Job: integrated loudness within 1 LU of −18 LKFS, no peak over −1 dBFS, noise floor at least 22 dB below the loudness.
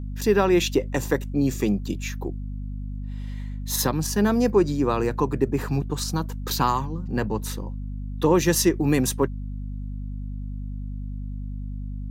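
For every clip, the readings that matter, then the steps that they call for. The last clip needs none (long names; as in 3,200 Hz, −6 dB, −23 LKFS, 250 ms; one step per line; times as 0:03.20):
mains hum 50 Hz; hum harmonics up to 250 Hz; level of the hum −29 dBFS; integrated loudness −25.5 LKFS; sample peak −6.5 dBFS; target loudness −18.0 LKFS
→ mains-hum notches 50/100/150/200/250 Hz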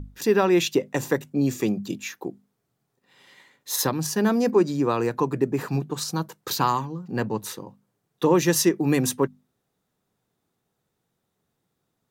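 mains hum none found; integrated loudness −24.0 LKFS; sample peak −7.5 dBFS; target loudness −18.0 LKFS
→ level +6 dB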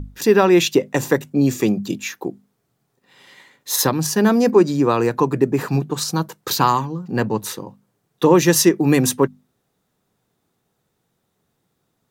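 integrated loudness −18.0 LKFS; sample peak −1.5 dBFS; background noise floor −72 dBFS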